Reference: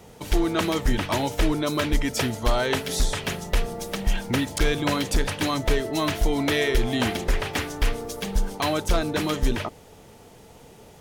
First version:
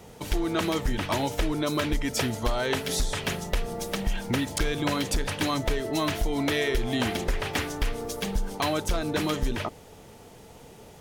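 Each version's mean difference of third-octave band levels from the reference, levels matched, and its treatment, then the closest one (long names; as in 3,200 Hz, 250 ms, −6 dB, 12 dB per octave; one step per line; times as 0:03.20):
1.5 dB: downward compressor, threshold −22 dBFS, peak gain reduction 6.5 dB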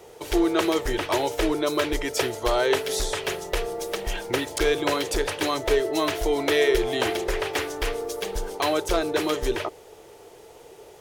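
3.5 dB: low shelf with overshoot 290 Hz −8 dB, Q 3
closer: first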